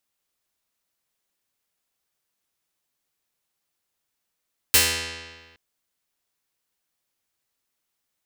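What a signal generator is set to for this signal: plucked string E2, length 0.82 s, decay 1.50 s, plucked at 0.44, medium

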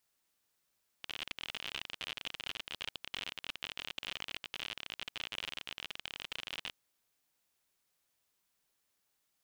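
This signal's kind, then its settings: random clicks 52 per s -23.5 dBFS 5.73 s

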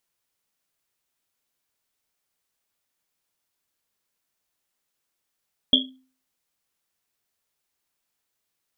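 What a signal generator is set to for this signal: Risset drum, pitch 260 Hz, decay 0.43 s, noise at 3.3 kHz, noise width 230 Hz, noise 65%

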